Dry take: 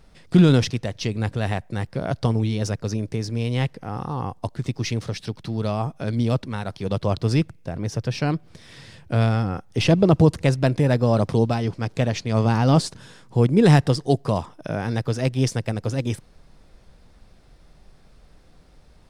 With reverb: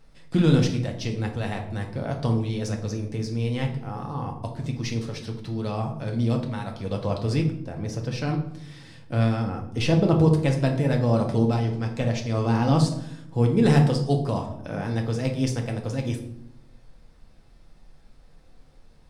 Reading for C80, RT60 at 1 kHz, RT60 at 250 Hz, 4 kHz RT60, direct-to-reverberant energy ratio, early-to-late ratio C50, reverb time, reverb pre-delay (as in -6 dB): 12.0 dB, 0.70 s, 1.2 s, 0.50 s, 1.5 dB, 8.5 dB, 0.80 s, 4 ms